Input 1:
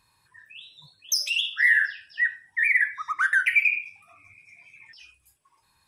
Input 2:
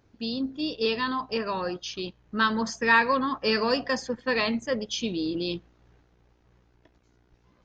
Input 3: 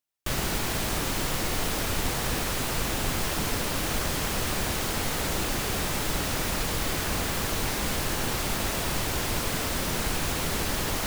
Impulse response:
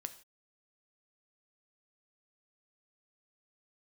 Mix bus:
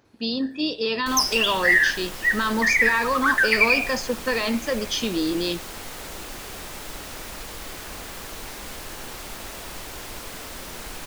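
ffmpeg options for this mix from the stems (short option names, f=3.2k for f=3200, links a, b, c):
-filter_complex "[0:a]dynaudnorm=f=230:g=3:m=9dB,adelay=50,volume=-6dB[a];[1:a]highpass=f=230:p=1,alimiter=limit=-21dB:level=0:latency=1,volume=3dB,asplit=2[b][c];[c]volume=-4dB[d];[2:a]equalizer=f=120:w=0.75:g=-8,adelay=800,volume=-7dB[e];[3:a]atrim=start_sample=2205[f];[d][f]afir=irnorm=-1:irlink=0[g];[a][b][e][g]amix=inputs=4:normalize=0"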